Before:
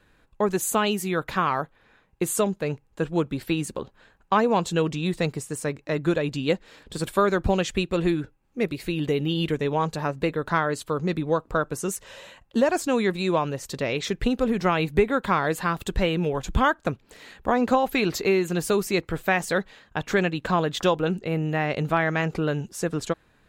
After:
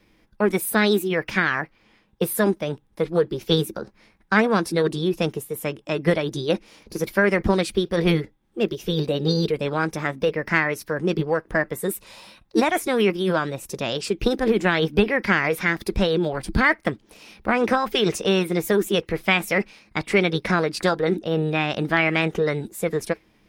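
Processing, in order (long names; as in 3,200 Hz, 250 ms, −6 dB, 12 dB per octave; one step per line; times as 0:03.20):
parametric band 510 Hz −3 dB 1.6 octaves
hollow resonant body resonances 210/320 Hz, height 10 dB, ringing for 80 ms
dynamic equaliser 1,600 Hz, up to +7 dB, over −42 dBFS, Q 2.3
formants moved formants +5 semitones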